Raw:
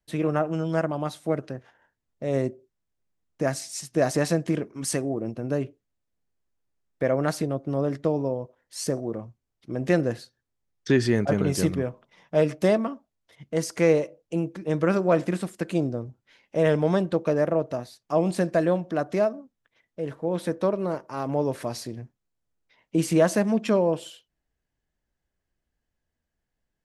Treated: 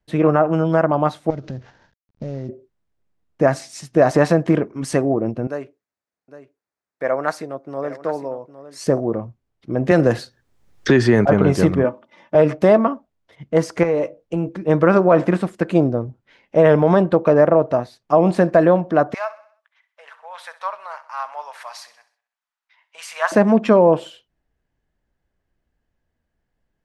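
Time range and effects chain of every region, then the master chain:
1.3–2.49 CVSD 32 kbps + tone controls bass +10 dB, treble +9 dB + compressor 10:1, threshold -33 dBFS
5.47–8.81 HPF 1200 Hz 6 dB/oct + bell 3100 Hz -7.5 dB 0.59 oct + echo 0.81 s -13 dB
9.91–11.26 high shelf 4000 Hz +9.5 dB + three-band squash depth 70%
11.84–12.35 HPF 130 Hz + comb 3.4 ms, depth 71%
13.83–14.49 compressor 12:1, threshold -24 dBFS + doubler 17 ms -11 dB
19.14–23.32 inverse Chebyshev high-pass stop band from 360 Hz, stop band 50 dB + feedback echo 64 ms, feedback 50%, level -15.5 dB
whole clip: LPF 2000 Hz 6 dB/oct; dynamic EQ 1000 Hz, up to +7 dB, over -37 dBFS, Q 0.74; maximiser +10.5 dB; gain -2.5 dB

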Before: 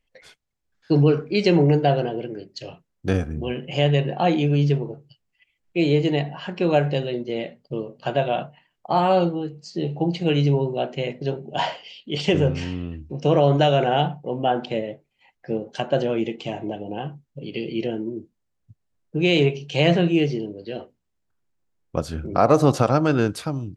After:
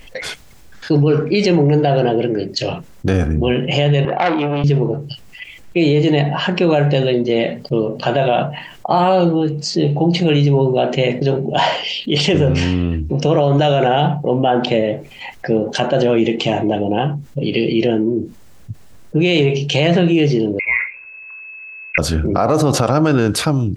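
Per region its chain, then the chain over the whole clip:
4.05–4.64 band-pass 1200 Hz, Q 0.55 + air absorption 230 m + core saturation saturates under 1500 Hz
20.59–21.98 comb 1.9 ms, depth 55% + inverted band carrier 2600 Hz
whole clip: maximiser +13 dB; fast leveller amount 50%; gain -5.5 dB

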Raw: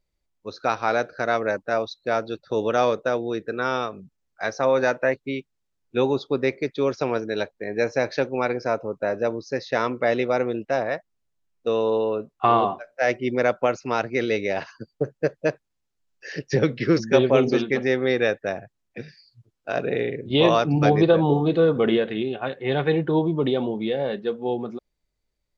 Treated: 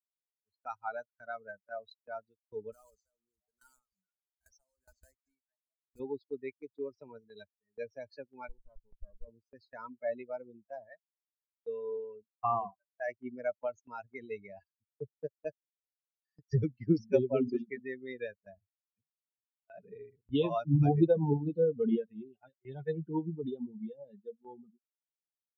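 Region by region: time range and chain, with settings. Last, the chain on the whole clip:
2.72–6 block floating point 3-bit + delay with a stepping band-pass 0.218 s, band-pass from 5100 Hz, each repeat -1.4 oct, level -8 dB + compressor 3:1, threshold -28 dBFS
8.49–9.28 LPF 1500 Hz + bell 800 Hz -9.5 dB 0.4 oct + tube stage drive 23 dB, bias 0.55
whole clip: per-bin expansion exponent 3; tilt -3.5 dB/oct; gate with hold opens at -43 dBFS; gain -8.5 dB

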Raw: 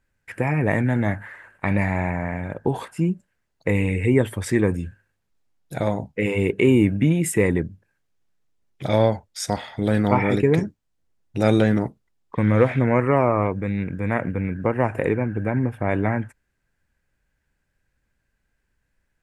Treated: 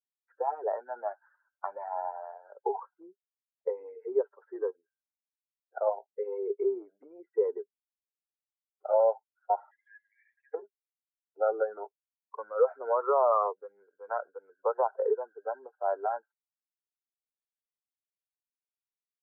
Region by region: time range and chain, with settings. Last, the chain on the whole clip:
9.71–10.54 brick-wall FIR high-pass 1600 Hz + three-band squash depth 100%
whole clip: per-bin expansion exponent 2; limiter -19 dBFS; Chebyshev band-pass 400–1400 Hz, order 5; gain +7 dB

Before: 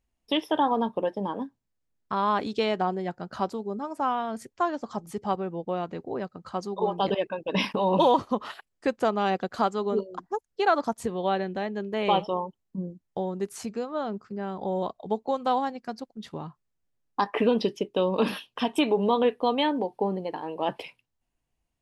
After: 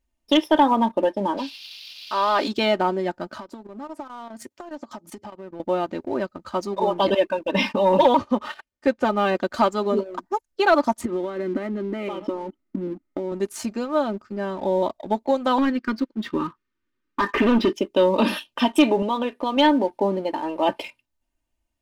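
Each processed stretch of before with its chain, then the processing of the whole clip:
1.37–2.47 HPF 420 Hz + transient shaper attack -4 dB, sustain +6 dB + band noise 2500–5000 Hz -46 dBFS
3.28–5.6 HPF 83 Hz 24 dB/oct + compressor 10:1, threshold -38 dBFS + chopper 4.9 Hz, depth 60%, duty 90%
7.51–9.35 air absorption 68 m + notch comb 330 Hz
11.01–13.32 high shelf 5100 Hz -10.5 dB + compressor 20:1, threshold -36 dBFS + small resonant body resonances 290/1300/2000 Hz, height 14 dB, ringing for 20 ms
15.58–17.73 Butterworth band-stop 700 Hz, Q 0.98 + overdrive pedal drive 23 dB, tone 1100 Hz, clips at -15 dBFS + air absorption 100 m
19.02–19.57 HPF 160 Hz 6 dB/oct + compressor 2:1, threshold -29 dBFS
whole clip: comb 3.3 ms, depth 66%; sample leveller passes 1; gain +1.5 dB

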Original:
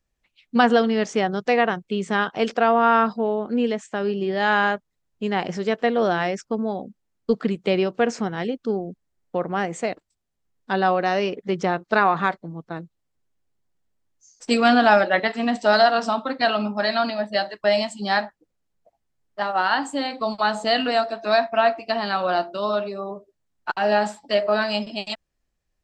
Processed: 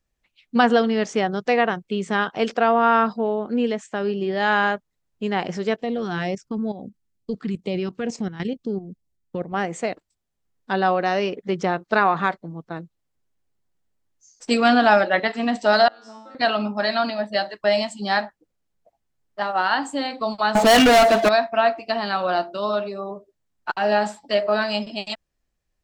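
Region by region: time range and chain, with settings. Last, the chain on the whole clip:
5.76–9.54 tone controls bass +7 dB, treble +3 dB + level quantiser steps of 12 dB + LFO notch sine 2.2 Hz 550–1600 Hz
15.88–16.35 compressor 10:1, threshold -25 dBFS + resonant low shelf 210 Hz -12 dB, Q 3 + resonator 110 Hz, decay 0.63 s, mix 100%
20.55–21.29 air absorption 120 m + sample leveller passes 5
whole clip: dry

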